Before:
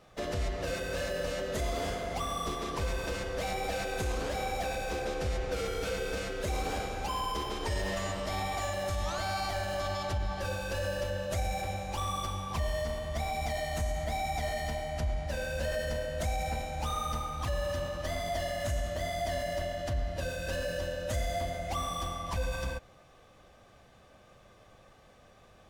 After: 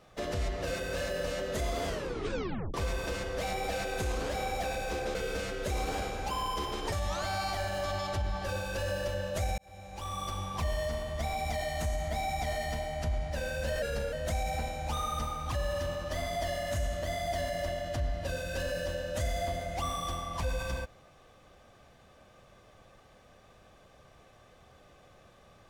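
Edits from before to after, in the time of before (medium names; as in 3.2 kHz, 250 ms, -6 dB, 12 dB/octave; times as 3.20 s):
1.86 s: tape stop 0.88 s
5.15–5.93 s: delete
7.70–8.88 s: delete
11.54–12.38 s: fade in
15.78–16.06 s: speed 91%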